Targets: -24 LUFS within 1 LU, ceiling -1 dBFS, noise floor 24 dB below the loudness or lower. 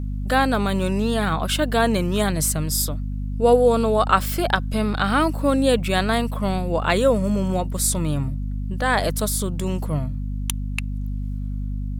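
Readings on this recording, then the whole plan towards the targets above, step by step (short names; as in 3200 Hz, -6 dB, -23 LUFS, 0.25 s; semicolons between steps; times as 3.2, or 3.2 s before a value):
hum 50 Hz; harmonics up to 250 Hz; hum level -24 dBFS; loudness -22.0 LUFS; peak -2.5 dBFS; loudness target -24.0 LUFS
-> de-hum 50 Hz, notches 5; gain -2 dB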